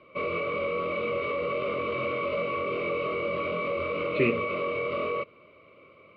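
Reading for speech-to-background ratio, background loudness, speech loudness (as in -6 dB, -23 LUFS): 0.5 dB, -29.5 LUFS, -29.0 LUFS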